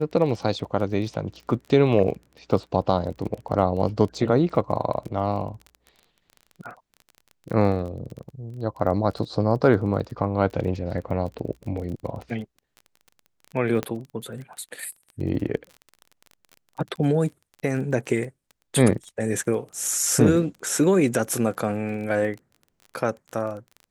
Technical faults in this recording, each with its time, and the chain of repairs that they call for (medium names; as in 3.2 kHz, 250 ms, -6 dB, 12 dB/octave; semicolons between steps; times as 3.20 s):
crackle 24 per s -33 dBFS
13.83 s: pop -13 dBFS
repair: de-click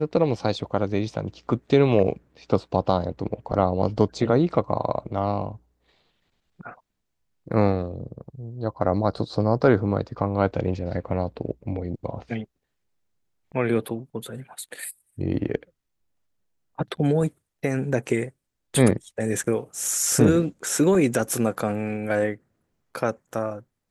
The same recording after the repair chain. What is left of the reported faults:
nothing left